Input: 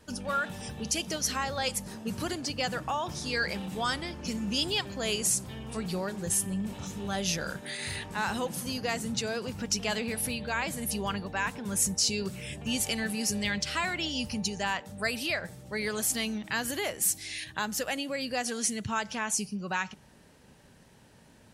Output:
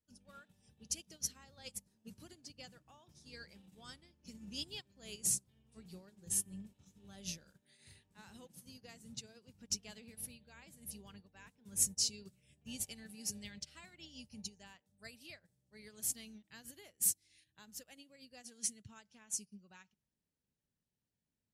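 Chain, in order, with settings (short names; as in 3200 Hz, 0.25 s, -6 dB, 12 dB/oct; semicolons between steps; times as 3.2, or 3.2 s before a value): bell 1000 Hz -10 dB 2.7 oct; upward expander 2.5:1, over -44 dBFS; gain -2.5 dB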